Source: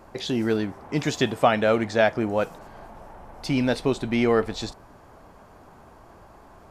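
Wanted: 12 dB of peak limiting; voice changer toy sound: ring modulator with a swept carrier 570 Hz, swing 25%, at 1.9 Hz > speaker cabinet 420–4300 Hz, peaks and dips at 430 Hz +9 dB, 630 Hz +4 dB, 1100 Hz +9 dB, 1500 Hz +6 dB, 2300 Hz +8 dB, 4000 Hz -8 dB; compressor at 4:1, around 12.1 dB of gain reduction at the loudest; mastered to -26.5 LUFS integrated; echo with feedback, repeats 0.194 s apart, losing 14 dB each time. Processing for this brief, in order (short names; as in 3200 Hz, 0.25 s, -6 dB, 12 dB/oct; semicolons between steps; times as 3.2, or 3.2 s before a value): compressor 4:1, threshold -28 dBFS; limiter -26.5 dBFS; feedback echo 0.194 s, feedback 20%, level -14 dB; ring modulator with a swept carrier 570 Hz, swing 25%, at 1.9 Hz; speaker cabinet 420–4300 Hz, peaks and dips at 430 Hz +9 dB, 630 Hz +4 dB, 1100 Hz +9 dB, 1500 Hz +6 dB, 2300 Hz +8 dB, 4000 Hz -8 dB; gain +9.5 dB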